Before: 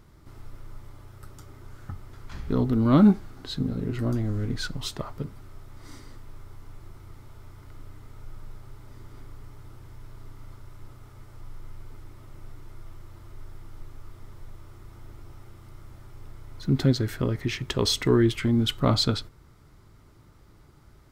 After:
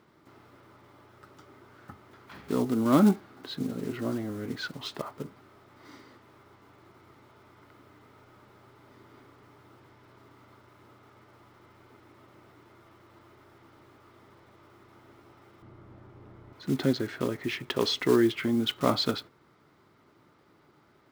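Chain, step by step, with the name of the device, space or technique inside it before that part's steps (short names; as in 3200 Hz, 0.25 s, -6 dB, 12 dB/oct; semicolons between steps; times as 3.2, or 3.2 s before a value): early digital voice recorder (BPF 240–3700 Hz; block floating point 5-bit); 15.62–16.53 tilt -3 dB/oct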